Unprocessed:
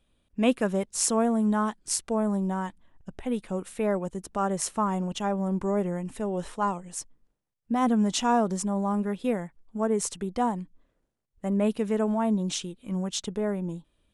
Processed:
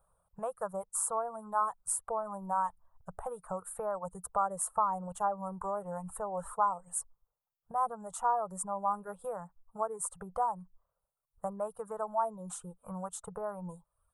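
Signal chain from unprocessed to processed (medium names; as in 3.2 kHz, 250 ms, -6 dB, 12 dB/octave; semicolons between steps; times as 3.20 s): reverb removal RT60 0.66 s; compression, threshold -32 dBFS, peak gain reduction 14.5 dB; FFT filter 180 Hz 0 dB, 270 Hz -28 dB, 470 Hz +4 dB, 890 Hz +13 dB, 1.3 kHz +13 dB, 2.1 kHz -17 dB, 3 kHz -19 dB, 5.7 kHz -15 dB, 8.7 kHz +9 dB; trim -4 dB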